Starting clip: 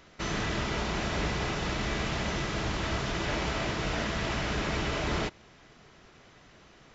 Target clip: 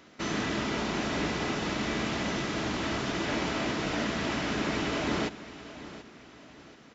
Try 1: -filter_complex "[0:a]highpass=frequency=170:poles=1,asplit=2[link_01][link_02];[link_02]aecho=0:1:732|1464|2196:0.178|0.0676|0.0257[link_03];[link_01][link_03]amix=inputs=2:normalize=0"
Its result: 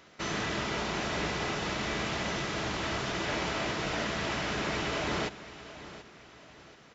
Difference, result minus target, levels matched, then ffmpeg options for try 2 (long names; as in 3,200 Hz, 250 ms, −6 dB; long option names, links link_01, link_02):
250 Hz band −4.0 dB
-filter_complex "[0:a]highpass=frequency=170:poles=1,equalizer=frequency=260:width_type=o:width=0.68:gain=9,asplit=2[link_01][link_02];[link_02]aecho=0:1:732|1464|2196:0.178|0.0676|0.0257[link_03];[link_01][link_03]amix=inputs=2:normalize=0"